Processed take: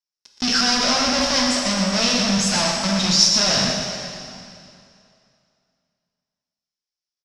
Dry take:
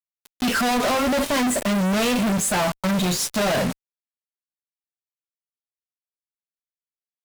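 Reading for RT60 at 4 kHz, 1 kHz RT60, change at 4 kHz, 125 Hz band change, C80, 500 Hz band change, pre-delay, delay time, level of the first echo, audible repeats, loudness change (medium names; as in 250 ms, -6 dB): 2.3 s, 2.5 s, +11.0 dB, 0.0 dB, 2.0 dB, -2.0 dB, 4 ms, 120 ms, -7.0 dB, 1, +4.0 dB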